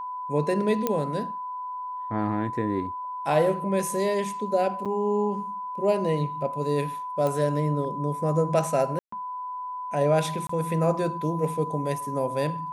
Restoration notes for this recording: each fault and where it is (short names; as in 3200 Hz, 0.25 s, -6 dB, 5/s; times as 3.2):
tone 1000 Hz -31 dBFS
0.87 pop -11 dBFS
4.85–4.86 gap 6.8 ms
7.27 pop -16 dBFS
8.99–9.12 gap 0.134 s
10.47–10.49 gap 24 ms